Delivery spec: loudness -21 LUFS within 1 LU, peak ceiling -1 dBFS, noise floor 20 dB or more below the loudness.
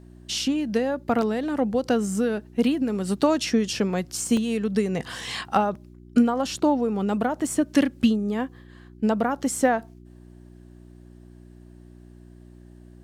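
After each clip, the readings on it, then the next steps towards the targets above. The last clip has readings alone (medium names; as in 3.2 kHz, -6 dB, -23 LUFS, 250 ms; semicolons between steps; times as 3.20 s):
dropouts 3; longest dropout 2.0 ms; hum 60 Hz; highest harmonic 360 Hz; hum level -46 dBFS; loudness -24.5 LUFS; peak level -7.0 dBFS; loudness target -21.0 LUFS
-> interpolate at 1.22/4.37/7.47 s, 2 ms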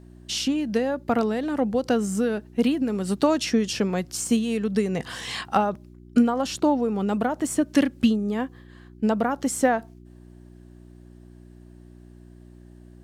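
dropouts 0; hum 60 Hz; highest harmonic 360 Hz; hum level -46 dBFS
-> de-hum 60 Hz, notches 6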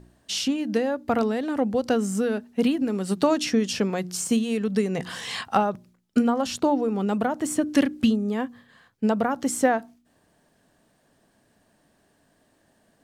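hum not found; loudness -25.0 LUFS; peak level -7.0 dBFS; loudness target -21.0 LUFS
-> trim +4 dB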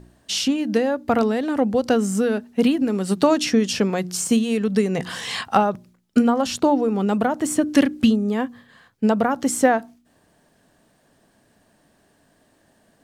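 loudness -21.0 LUFS; peak level -3.0 dBFS; noise floor -61 dBFS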